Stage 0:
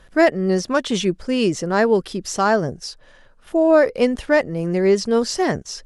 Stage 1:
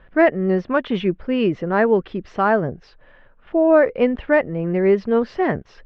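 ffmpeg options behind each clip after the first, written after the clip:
ffmpeg -i in.wav -af "lowpass=frequency=2700:width=0.5412,lowpass=frequency=2700:width=1.3066" out.wav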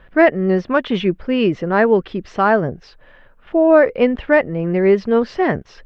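ffmpeg -i in.wav -af "highshelf=frequency=4300:gain=8,volume=2.5dB" out.wav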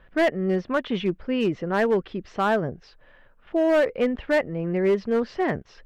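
ffmpeg -i in.wav -af "asoftclip=type=hard:threshold=-8.5dB,volume=-7dB" out.wav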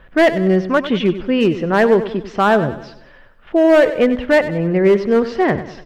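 ffmpeg -i in.wav -af "aecho=1:1:96|192|288|384|480:0.224|0.105|0.0495|0.0232|0.0109,volume=8.5dB" out.wav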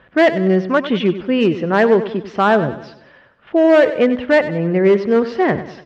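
ffmpeg -i in.wav -af "highpass=100,lowpass=5600" out.wav

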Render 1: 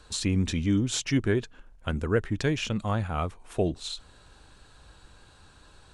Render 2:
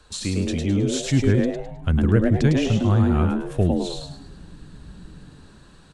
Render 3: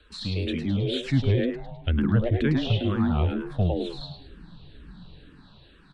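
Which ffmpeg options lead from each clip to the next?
ffmpeg -i in.wav -filter_complex "[0:a]acrossover=split=190[link_01][link_02];[link_01]dynaudnorm=framelen=400:gausssize=5:maxgain=12dB[link_03];[link_03][link_02]amix=inputs=2:normalize=0,asplit=6[link_04][link_05][link_06][link_07][link_08][link_09];[link_05]adelay=105,afreqshift=130,volume=-4dB[link_10];[link_06]adelay=210,afreqshift=260,volume=-12.9dB[link_11];[link_07]adelay=315,afreqshift=390,volume=-21.7dB[link_12];[link_08]adelay=420,afreqshift=520,volume=-30.6dB[link_13];[link_09]adelay=525,afreqshift=650,volume=-39.5dB[link_14];[link_04][link_10][link_11][link_12][link_13][link_14]amix=inputs=6:normalize=0" out.wav
ffmpeg -i in.wav -filter_complex "[0:a]highshelf=frequency=5000:width_type=q:width=3:gain=-11,asplit=2[link_01][link_02];[link_02]afreqshift=-2.1[link_03];[link_01][link_03]amix=inputs=2:normalize=1,volume=-1.5dB" out.wav

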